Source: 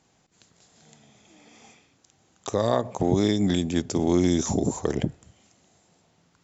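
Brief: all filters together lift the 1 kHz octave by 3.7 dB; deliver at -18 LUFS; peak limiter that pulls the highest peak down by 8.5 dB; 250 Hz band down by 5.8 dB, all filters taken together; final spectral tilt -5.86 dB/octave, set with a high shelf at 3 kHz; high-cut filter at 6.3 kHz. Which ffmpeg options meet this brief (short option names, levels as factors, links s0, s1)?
-af "lowpass=6300,equalizer=f=250:t=o:g=-8.5,equalizer=f=1000:t=o:g=6,highshelf=f=3000:g=-4.5,volume=3.98,alimiter=limit=0.631:level=0:latency=1"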